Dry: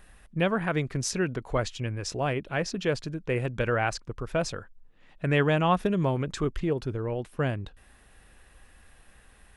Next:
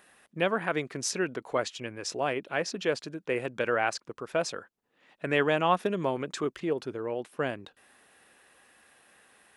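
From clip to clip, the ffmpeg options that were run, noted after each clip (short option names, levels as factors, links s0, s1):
-af "highpass=280"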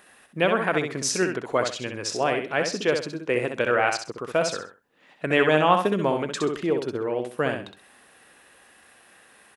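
-af "aecho=1:1:65|130|195:0.501|0.135|0.0365,volume=1.78"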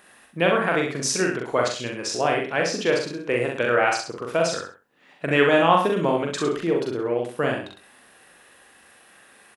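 -filter_complex "[0:a]asplit=2[s0][s1];[s1]adelay=42,volume=0.708[s2];[s0][s2]amix=inputs=2:normalize=0"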